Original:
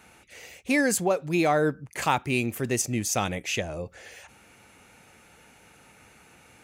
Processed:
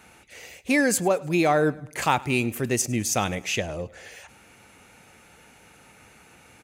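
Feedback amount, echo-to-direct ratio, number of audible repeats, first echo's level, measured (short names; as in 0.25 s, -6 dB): 49%, -21.5 dB, 3, -22.5 dB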